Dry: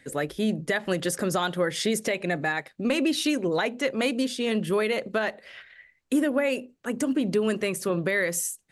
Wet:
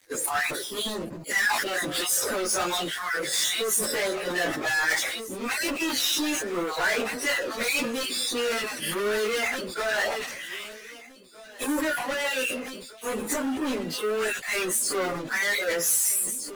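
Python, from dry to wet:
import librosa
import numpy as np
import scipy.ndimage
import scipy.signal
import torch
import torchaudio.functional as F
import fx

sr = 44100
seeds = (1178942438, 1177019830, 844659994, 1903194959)

p1 = fx.spec_dropout(x, sr, seeds[0], share_pct=36)
p2 = scipy.signal.sosfilt(scipy.signal.butter(2, 360.0, 'highpass', fs=sr, output='sos'), p1)
p3 = fx.leveller(p2, sr, passes=5)
p4 = fx.high_shelf(p3, sr, hz=4500.0, db=7.5)
p5 = p4 + fx.echo_feedback(p4, sr, ms=826, feedback_pct=32, wet_db=-18.5, dry=0)
p6 = fx.stretch_vocoder_free(p5, sr, factor=1.9)
p7 = fx.dynamic_eq(p6, sr, hz=1500.0, q=1.5, threshold_db=-36.0, ratio=4.0, max_db=5)
p8 = fx.sustainer(p7, sr, db_per_s=40.0)
y = p8 * 10.0 ** (-9.0 / 20.0)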